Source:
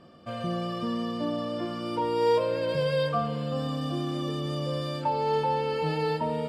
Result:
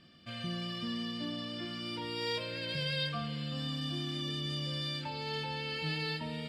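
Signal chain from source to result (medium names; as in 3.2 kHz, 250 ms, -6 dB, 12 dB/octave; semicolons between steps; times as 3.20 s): graphic EQ 500/1000/2000/4000 Hz -10/-10/+7/+9 dB; trim -5 dB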